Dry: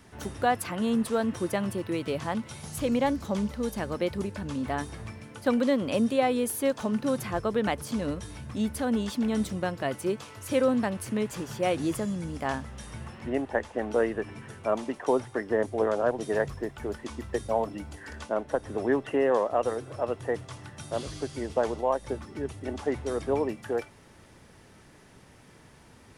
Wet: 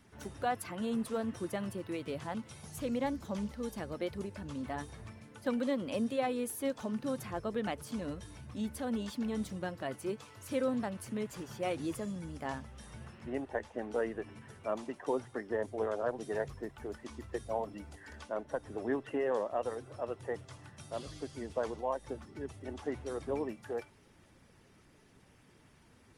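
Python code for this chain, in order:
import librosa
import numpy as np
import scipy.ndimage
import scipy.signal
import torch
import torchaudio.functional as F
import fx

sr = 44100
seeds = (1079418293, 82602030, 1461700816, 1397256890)

y = fx.spec_quant(x, sr, step_db=15)
y = y * 10.0 ** (-8.0 / 20.0)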